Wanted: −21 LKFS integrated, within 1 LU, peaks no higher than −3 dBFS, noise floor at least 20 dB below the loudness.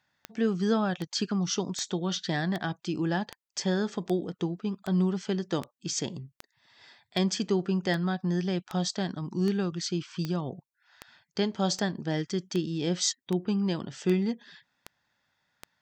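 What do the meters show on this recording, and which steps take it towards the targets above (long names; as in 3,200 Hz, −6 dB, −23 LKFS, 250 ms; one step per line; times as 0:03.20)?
number of clicks 21; integrated loudness −30.0 LKFS; sample peak −14.0 dBFS; target loudness −21.0 LKFS
→ click removal
level +9 dB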